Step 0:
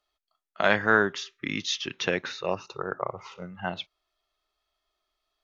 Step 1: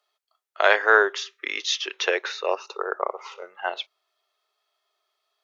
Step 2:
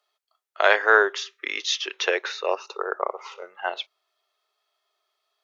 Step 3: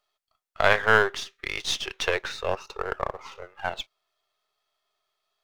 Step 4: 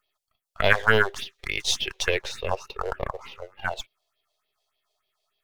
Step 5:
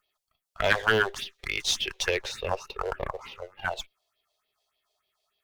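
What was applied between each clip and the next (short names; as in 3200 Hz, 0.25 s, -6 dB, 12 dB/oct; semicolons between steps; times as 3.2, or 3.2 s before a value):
elliptic high-pass 400 Hz, stop band 70 dB; gain +5 dB
nothing audible
half-wave gain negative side -7 dB
phaser stages 4, 3.4 Hz, lowest notch 210–1400 Hz; gain +4 dB
one diode to ground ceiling -12.5 dBFS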